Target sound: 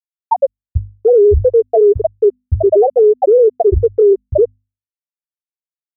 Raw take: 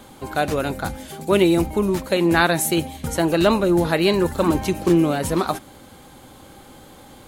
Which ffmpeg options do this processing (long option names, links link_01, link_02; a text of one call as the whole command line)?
ffmpeg -i in.wav -filter_complex "[0:a]equalizer=frequency=160:width_type=o:width=0.67:gain=-6,equalizer=frequency=400:width_type=o:width=0.67:gain=7,equalizer=frequency=1600:width_type=o:width=0.67:gain=-9,asplit=2[link_01][link_02];[link_02]adelay=134.1,volume=-29dB,highshelf=frequency=4000:gain=-3.02[link_03];[link_01][link_03]amix=inputs=2:normalize=0,asplit=2[link_04][link_05];[link_05]acontrast=31,volume=-1.5dB[link_06];[link_04][link_06]amix=inputs=2:normalize=0,afftfilt=real='re*gte(hypot(re,im),0.251)':imag='im*gte(hypot(re,im),0.251)':win_size=1024:overlap=0.75,asetrate=53802,aresample=44100,lowshelf=frequency=110:width_type=q:width=1.5:gain=10,afftfilt=real='re*gte(hypot(re,im),3.16)':imag='im*gte(hypot(re,im),3.16)':win_size=1024:overlap=0.75,acompressor=threshold=-10dB:ratio=6,bandreject=frequency=50:width_type=h:width=6,bandreject=frequency=100:width_type=h:width=6,bandreject=frequency=150:width_type=h:width=6,bandreject=frequency=200:width_type=h:width=6,bandreject=frequency=250:width_type=h:width=6,alimiter=level_in=15dB:limit=-1dB:release=50:level=0:latency=1,volume=-3.5dB" out.wav